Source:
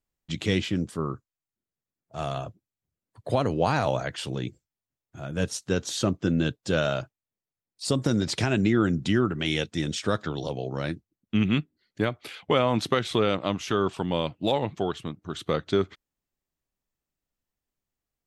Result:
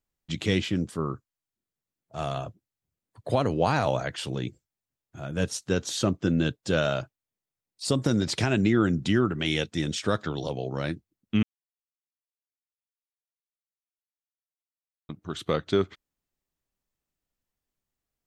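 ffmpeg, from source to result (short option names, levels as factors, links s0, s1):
-filter_complex "[0:a]asplit=3[s0][s1][s2];[s0]atrim=end=11.43,asetpts=PTS-STARTPTS,afade=t=out:st=11.426:d=0.004:c=hsin[s3];[s1]atrim=start=11.43:end=15.09,asetpts=PTS-STARTPTS,volume=0[s4];[s2]atrim=start=15.09,asetpts=PTS-STARTPTS,afade=t=in:d=0.004:c=hsin[s5];[s3][s4][s5]concat=n=3:v=0:a=1"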